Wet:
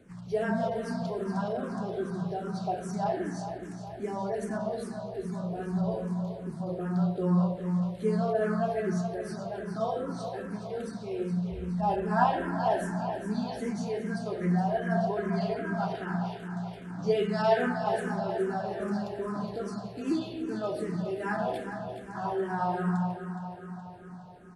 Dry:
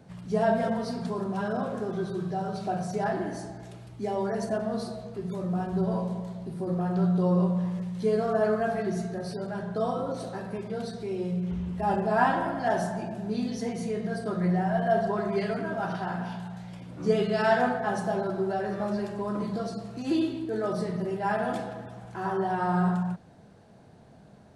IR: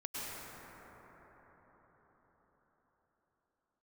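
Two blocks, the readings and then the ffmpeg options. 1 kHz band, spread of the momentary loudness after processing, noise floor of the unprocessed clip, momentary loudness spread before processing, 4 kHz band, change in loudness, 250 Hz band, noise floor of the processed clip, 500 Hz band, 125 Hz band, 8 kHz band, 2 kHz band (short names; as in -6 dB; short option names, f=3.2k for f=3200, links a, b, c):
-2.0 dB, 10 LU, -52 dBFS, 11 LU, -2.5 dB, -2.0 dB, -2.0 dB, -43 dBFS, -2.5 dB, -1.0 dB, -2.5 dB, -3.0 dB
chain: -filter_complex "[0:a]aecho=1:1:419|838|1257|1676|2095|2514|2933:0.335|0.188|0.105|0.0588|0.0329|0.0184|0.0103,asplit=2[a][b];[b]afreqshift=-2.5[c];[a][c]amix=inputs=2:normalize=1"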